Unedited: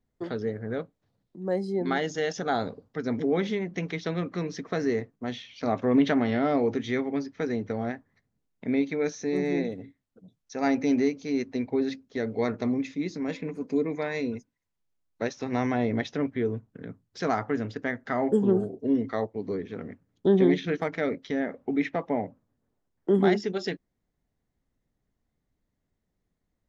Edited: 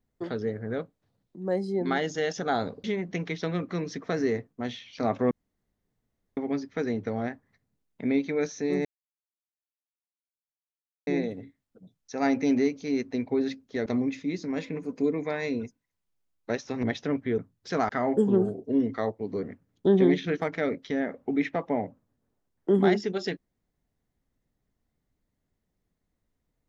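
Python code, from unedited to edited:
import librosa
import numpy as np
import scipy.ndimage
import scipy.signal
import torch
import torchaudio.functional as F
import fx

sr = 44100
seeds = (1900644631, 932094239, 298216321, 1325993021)

y = fx.edit(x, sr, fx.cut(start_s=2.84, length_s=0.63),
    fx.room_tone_fill(start_s=5.94, length_s=1.06),
    fx.insert_silence(at_s=9.48, length_s=2.22),
    fx.cut(start_s=12.27, length_s=0.31),
    fx.cut(start_s=15.55, length_s=0.38),
    fx.cut(start_s=16.48, length_s=0.4),
    fx.cut(start_s=17.39, length_s=0.65),
    fx.cut(start_s=19.58, length_s=0.25), tone=tone)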